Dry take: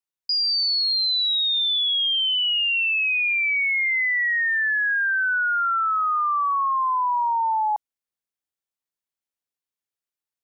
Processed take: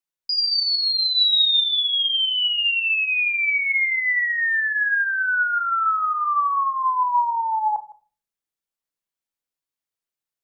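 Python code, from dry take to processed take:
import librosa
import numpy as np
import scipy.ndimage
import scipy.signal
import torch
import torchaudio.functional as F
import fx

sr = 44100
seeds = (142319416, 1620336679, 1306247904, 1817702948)

p1 = fx.high_shelf(x, sr, hz=4600.0, db=9.5, at=(1.16, 1.59), fade=0.02)
p2 = p1 + fx.echo_single(p1, sr, ms=159, db=-19.5, dry=0)
y = fx.room_shoebox(p2, sr, seeds[0], volume_m3=240.0, walls='furnished', distance_m=0.68)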